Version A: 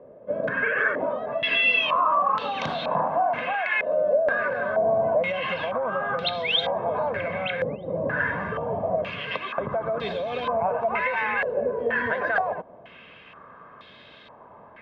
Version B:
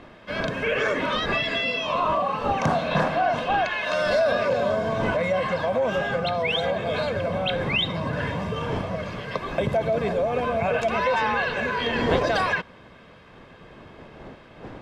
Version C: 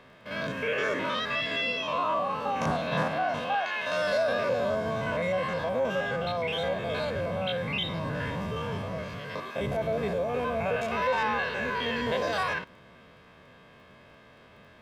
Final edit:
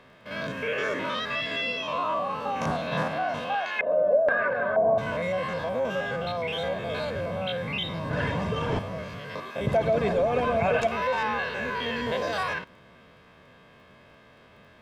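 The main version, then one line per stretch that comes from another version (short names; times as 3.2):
C
3.79–4.98 from A
8.11–8.79 from B
9.67–10.87 from B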